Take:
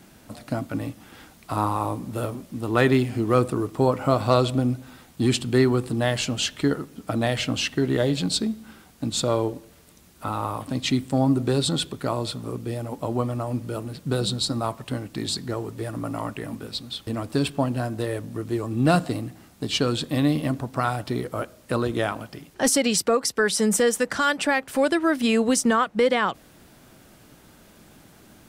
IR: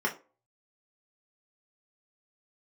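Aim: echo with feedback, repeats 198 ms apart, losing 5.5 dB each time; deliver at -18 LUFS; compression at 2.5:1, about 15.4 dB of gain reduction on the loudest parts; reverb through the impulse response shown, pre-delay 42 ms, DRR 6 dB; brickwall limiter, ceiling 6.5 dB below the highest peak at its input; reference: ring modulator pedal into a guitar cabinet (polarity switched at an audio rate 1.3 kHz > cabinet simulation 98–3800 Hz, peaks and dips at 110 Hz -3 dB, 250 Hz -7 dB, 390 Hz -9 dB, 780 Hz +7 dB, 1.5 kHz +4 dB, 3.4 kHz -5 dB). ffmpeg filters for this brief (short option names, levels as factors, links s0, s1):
-filter_complex "[0:a]acompressor=threshold=0.0112:ratio=2.5,alimiter=level_in=1.33:limit=0.0631:level=0:latency=1,volume=0.75,aecho=1:1:198|396|594|792|990|1188|1386:0.531|0.281|0.149|0.079|0.0419|0.0222|0.0118,asplit=2[s0][s1];[1:a]atrim=start_sample=2205,adelay=42[s2];[s1][s2]afir=irnorm=-1:irlink=0,volume=0.178[s3];[s0][s3]amix=inputs=2:normalize=0,aeval=exprs='val(0)*sgn(sin(2*PI*1300*n/s))':c=same,highpass=98,equalizer=f=110:t=q:w=4:g=-3,equalizer=f=250:t=q:w=4:g=-7,equalizer=f=390:t=q:w=4:g=-9,equalizer=f=780:t=q:w=4:g=7,equalizer=f=1500:t=q:w=4:g=4,equalizer=f=3400:t=q:w=4:g=-5,lowpass=f=3800:w=0.5412,lowpass=f=3800:w=1.3066,volume=5.96"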